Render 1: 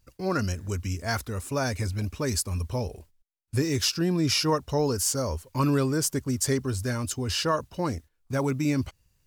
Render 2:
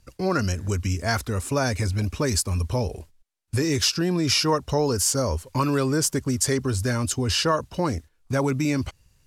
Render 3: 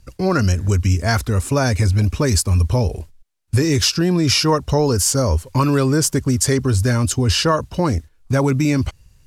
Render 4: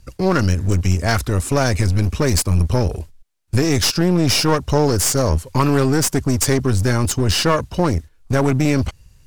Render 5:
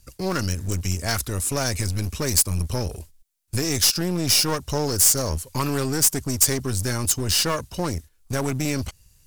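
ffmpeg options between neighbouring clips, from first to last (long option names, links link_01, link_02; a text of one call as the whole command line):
ffmpeg -i in.wav -filter_complex "[0:a]lowpass=12000,acrossover=split=390[link_01][link_02];[link_01]alimiter=limit=-24dB:level=0:latency=1[link_03];[link_03][link_02]amix=inputs=2:normalize=0,acompressor=threshold=-32dB:ratio=1.5,volume=7.5dB" out.wav
ffmpeg -i in.wav -af "lowshelf=frequency=150:gain=7,volume=4.5dB" out.wav
ffmpeg -i in.wav -af "aeval=exprs='clip(val(0),-1,0.075)':channel_layout=same,volume=2dB" out.wav
ffmpeg -i in.wav -af "crystalizer=i=3:c=0,volume=-9dB" out.wav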